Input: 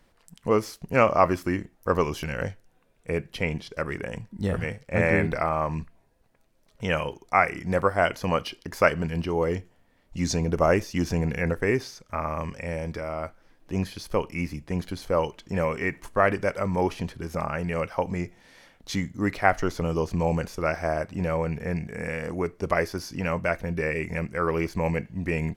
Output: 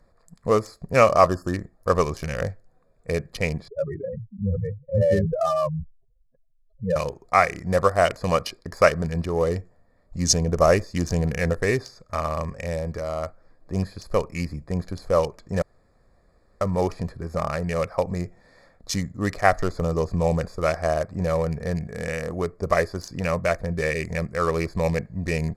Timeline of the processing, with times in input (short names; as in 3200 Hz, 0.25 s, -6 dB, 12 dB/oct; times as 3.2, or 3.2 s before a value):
1.27–1.54 spectral delete 1800–4300 Hz
3.68–6.96 spectral contrast raised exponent 3.7
15.62–16.61 room tone
whole clip: Wiener smoothing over 15 samples; band shelf 7600 Hz +11.5 dB; comb 1.7 ms, depth 39%; gain +2 dB